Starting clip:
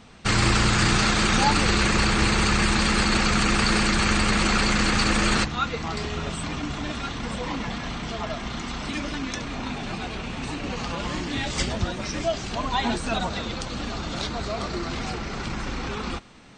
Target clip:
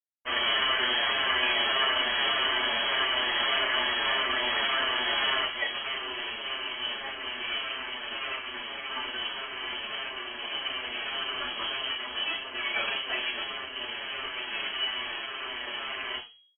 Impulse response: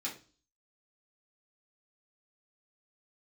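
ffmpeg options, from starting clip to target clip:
-filter_complex "[0:a]lowshelf=f=100:g=-8.5,aeval=exprs='max(val(0),0)':c=same,acrusher=bits=4:mix=0:aa=0.000001[s0];[1:a]atrim=start_sample=2205,asetrate=52920,aresample=44100[s1];[s0][s1]afir=irnorm=-1:irlink=0,lowpass=f=2800:t=q:w=0.5098,lowpass=f=2800:t=q:w=0.6013,lowpass=f=2800:t=q:w=0.9,lowpass=f=2800:t=q:w=2.563,afreqshift=-3300,asplit=2[s2][s3];[s3]adelay=7,afreqshift=-1.7[s4];[s2][s4]amix=inputs=2:normalize=1,volume=1.58"

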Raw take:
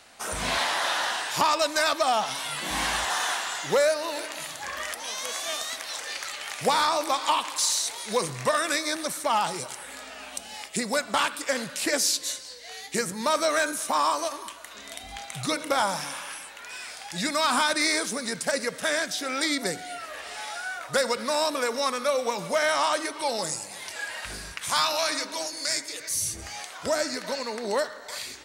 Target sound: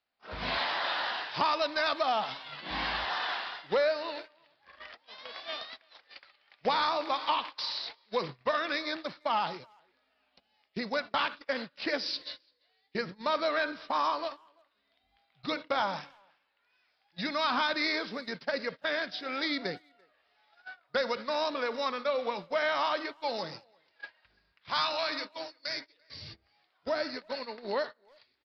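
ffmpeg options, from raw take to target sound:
-filter_complex "[0:a]agate=range=0.0447:threshold=0.0282:ratio=16:detection=peak,aresample=11025,aresample=44100,asplit=2[s0][s1];[s1]adelay=340,highpass=300,lowpass=3400,asoftclip=type=hard:threshold=0.075,volume=0.0355[s2];[s0][s2]amix=inputs=2:normalize=0,volume=0.562"

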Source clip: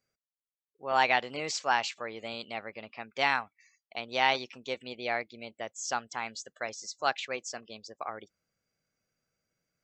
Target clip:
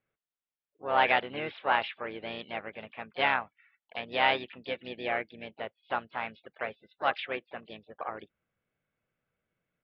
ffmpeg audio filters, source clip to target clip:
-filter_complex "[0:a]aresample=8000,aresample=44100,asplit=3[s0][s1][s2];[s1]asetrate=33038,aresample=44100,atempo=1.33484,volume=0.355[s3];[s2]asetrate=58866,aresample=44100,atempo=0.749154,volume=0.158[s4];[s0][s3][s4]amix=inputs=3:normalize=0"

